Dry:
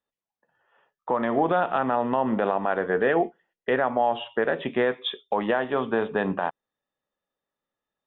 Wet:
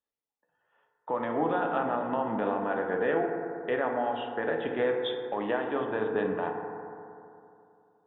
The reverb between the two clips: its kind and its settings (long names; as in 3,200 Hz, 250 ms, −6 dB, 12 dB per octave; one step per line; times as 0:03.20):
feedback delay network reverb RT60 2.7 s, high-frequency decay 0.25×, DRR 2 dB
level −7.5 dB